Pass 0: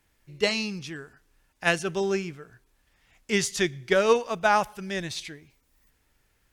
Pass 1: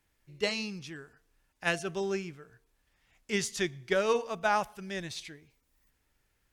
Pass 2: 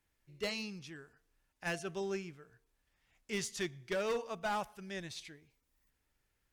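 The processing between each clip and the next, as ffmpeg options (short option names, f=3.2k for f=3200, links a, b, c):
-af "bandreject=f=227.7:t=h:w=4,bandreject=f=455.4:t=h:w=4,bandreject=f=683.1:t=h:w=4,bandreject=f=910.8:t=h:w=4,bandreject=f=1.1385k:t=h:w=4,volume=-6dB"
-af "aeval=exprs='0.251*(cos(1*acos(clip(val(0)/0.251,-1,1)))-cos(1*PI/2))+0.0631*(cos(5*acos(clip(val(0)/0.251,-1,1)))-cos(5*PI/2))+0.0316*(cos(7*acos(clip(val(0)/0.251,-1,1)))-cos(7*PI/2))':c=same,asoftclip=type=hard:threshold=-22dB,volume=-8.5dB"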